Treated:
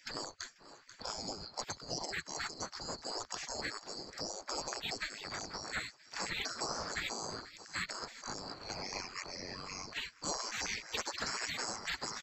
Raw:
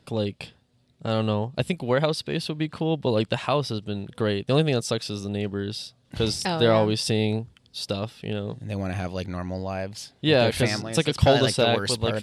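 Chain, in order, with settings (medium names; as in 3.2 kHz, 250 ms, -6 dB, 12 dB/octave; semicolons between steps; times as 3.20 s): split-band scrambler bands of 4 kHz; low-pass 1.3 kHz 12 dB/octave; peak limiter -27 dBFS, peak gain reduction 11 dB; on a send: feedback delay 487 ms, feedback 44%, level -22.5 dB; on the sum: spectral gate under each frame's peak -20 dB weak; three bands compressed up and down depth 70%; trim +18 dB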